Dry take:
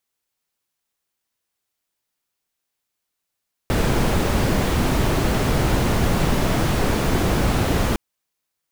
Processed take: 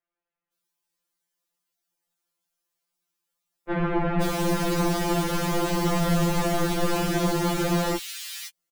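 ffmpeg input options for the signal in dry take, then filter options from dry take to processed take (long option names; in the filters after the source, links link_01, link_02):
-f lavfi -i "anoisesrc=color=brown:amplitude=0.556:duration=4.26:sample_rate=44100:seed=1"
-filter_complex "[0:a]acrossover=split=150[link_01][link_02];[link_01]alimiter=limit=-21dB:level=0:latency=1:release=285[link_03];[link_03][link_02]amix=inputs=2:normalize=0,acrossover=split=2400[link_04][link_05];[link_05]adelay=520[link_06];[link_04][link_06]amix=inputs=2:normalize=0,afftfilt=real='re*2.83*eq(mod(b,8),0)':imag='im*2.83*eq(mod(b,8),0)':win_size=2048:overlap=0.75"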